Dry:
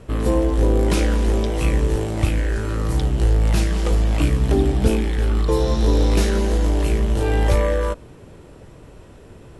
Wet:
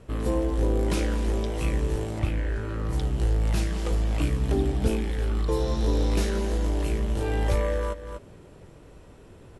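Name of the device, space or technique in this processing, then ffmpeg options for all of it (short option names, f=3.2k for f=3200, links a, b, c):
ducked delay: -filter_complex "[0:a]asplit=3[a][b][c];[b]adelay=242,volume=-4dB[d];[c]apad=whole_len=433942[e];[d][e]sidechaincompress=threshold=-30dB:ratio=8:attack=8.1:release=313[f];[a][f]amix=inputs=2:normalize=0,asettb=1/sr,asplit=3[g][h][i];[g]atrim=end=2.194[j];[h]atrim=start=2.19:end=2.93,asetpts=PTS-STARTPTS,afade=t=in:d=0.004:c=qsin,afade=t=out:st=0.736:d=0.004:c=qsin,bass=f=250:g=0,treble=f=4k:g=-9[k];[i]atrim=start=2.926[l];[j][k]acrossfade=d=0.004:c1=hsin:c2=qsin[m];[m][l]acrossfade=d=0.004:c1=qsin:c2=hsin,volume=-7dB"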